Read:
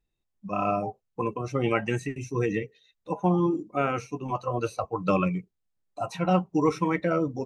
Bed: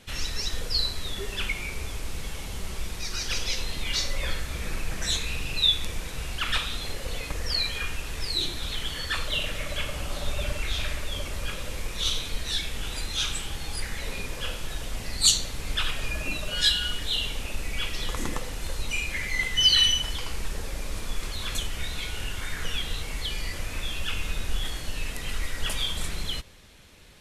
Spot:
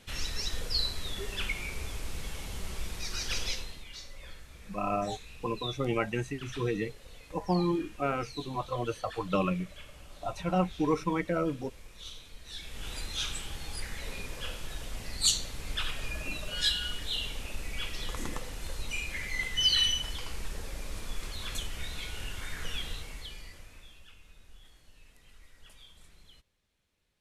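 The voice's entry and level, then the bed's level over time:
4.25 s, -4.5 dB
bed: 3.48 s -4 dB
3.89 s -18 dB
12.40 s -18 dB
12.89 s -6 dB
22.86 s -6 dB
24.18 s -26 dB

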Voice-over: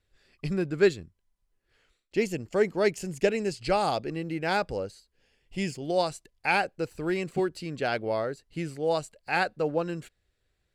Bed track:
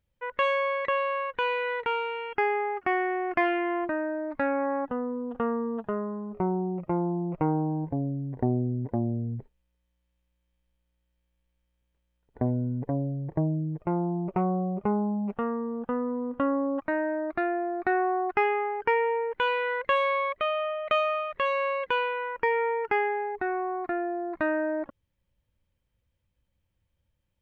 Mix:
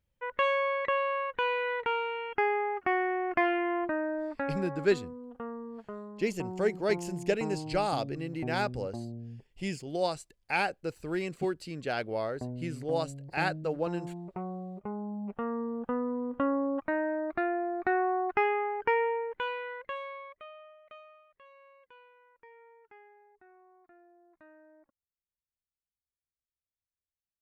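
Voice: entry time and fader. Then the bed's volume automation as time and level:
4.05 s, -4.0 dB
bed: 4.25 s -2 dB
4.66 s -11.5 dB
14.92 s -11.5 dB
15.60 s -2.5 dB
19.02 s -2.5 dB
21.26 s -30 dB

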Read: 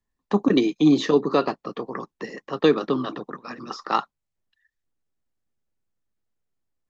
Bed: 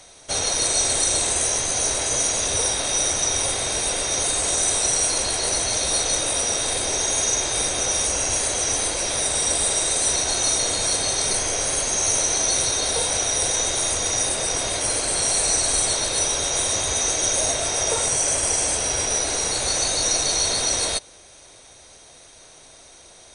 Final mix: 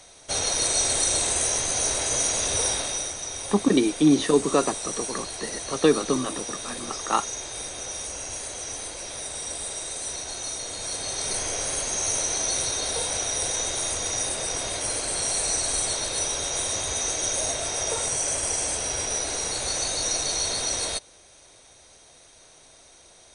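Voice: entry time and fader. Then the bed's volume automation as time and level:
3.20 s, -1.0 dB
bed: 2.75 s -2.5 dB
3.16 s -11.5 dB
10.67 s -11.5 dB
11.42 s -5 dB

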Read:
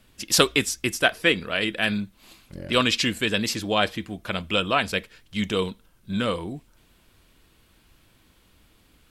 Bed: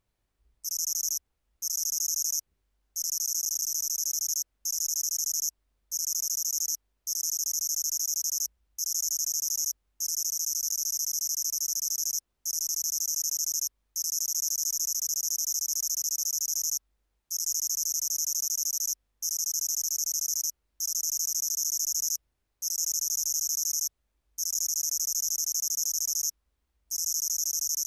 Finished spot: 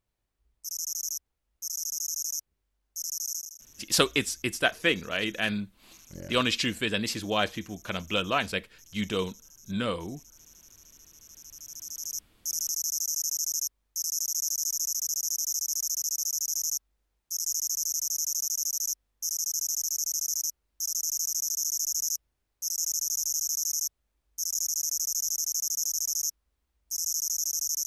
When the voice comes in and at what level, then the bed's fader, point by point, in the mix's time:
3.60 s, -4.5 dB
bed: 3.35 s -3.5 dB
3.65 s -25 dB
11.14 s -25 dB
12.34 s -0.5 dB

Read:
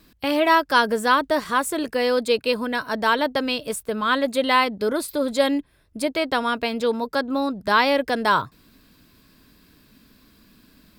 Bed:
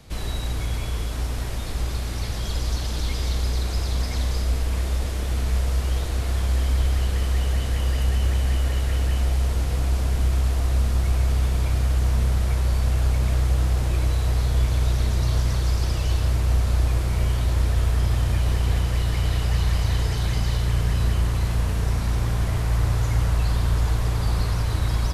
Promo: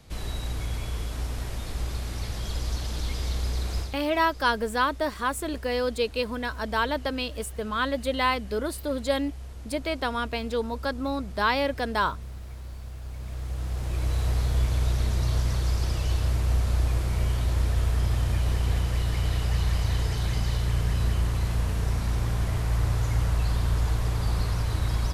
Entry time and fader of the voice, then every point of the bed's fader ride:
3.70 s, -6.0 dB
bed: 3.80 s -4.5 dB
4.00 s -18 dB
13.01 s -18 dB
14.19 s -3.5 dB

